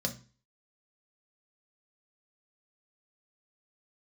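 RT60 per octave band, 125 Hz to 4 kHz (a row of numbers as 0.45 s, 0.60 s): 0.45 s, 0.45 s, 0.35 s, 0.35 s, 0.35 s, 0.35 s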